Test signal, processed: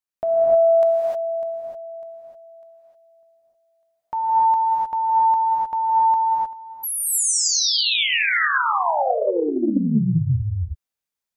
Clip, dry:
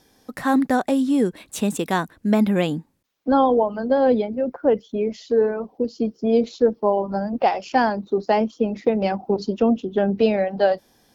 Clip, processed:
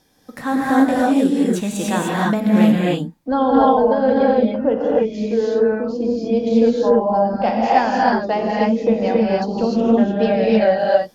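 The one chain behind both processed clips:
notch filter 410 Hz, Q 12
reverb whose tail is shaped and stops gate 330 ms rising, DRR −5 dB
highs frequency-modulated by the lows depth 0.11 ms
level −2 dB

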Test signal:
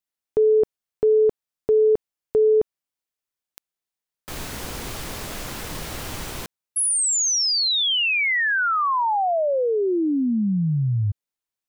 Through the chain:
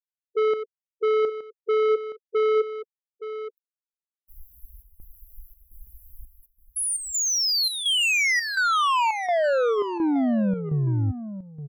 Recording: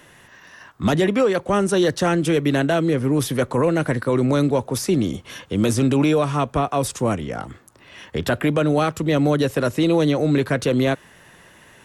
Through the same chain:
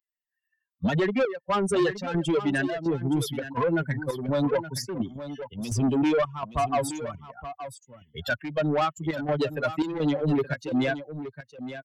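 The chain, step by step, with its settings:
spectral dynamics exaggerated over time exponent 3
low-pass filter 2,400 Hz 6 dB per octave
low-shelf EQ 200 Hz −8 dB
in parallel at −2.5 dB: brickwall limiter −24.5 dBFS
on the sum: soft clipping −24.5 dBFS
square-wave tremolo 1.4 Hz, depth 65%, duty 75%
on a send: single-tap delay 870 ms −12 dB
on the sum: level +5 dB

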